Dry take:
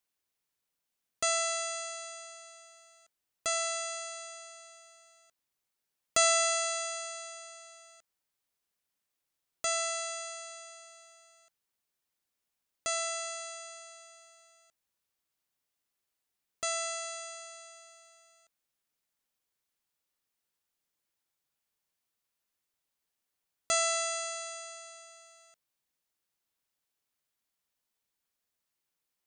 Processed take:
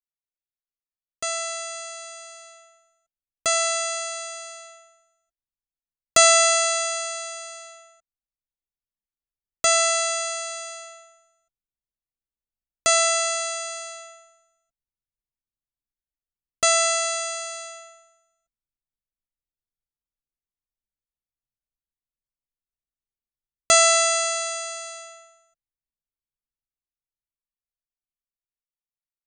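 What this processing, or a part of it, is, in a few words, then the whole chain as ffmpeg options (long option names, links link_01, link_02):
voice memo with heavy noise removal: -af "anlmdn=0.00158,dynaudnorm=framelen=840:gausssize=7:maxgain=14.5dB"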